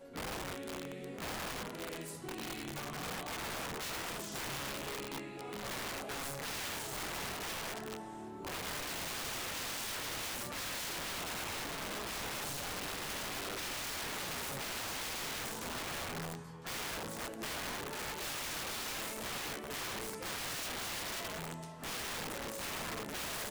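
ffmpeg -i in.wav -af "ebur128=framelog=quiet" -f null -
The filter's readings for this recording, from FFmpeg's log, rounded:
Integrated loudness:
  I:         -39.2 LUFS
  Threshold: -49.2 LUFS
Loudness range:
  LRA:         1.9 LU
  Threshold: -59.1 LUFS
  LRA low:   -40.0 LUFS
  LRA high:  -38.1 LUFS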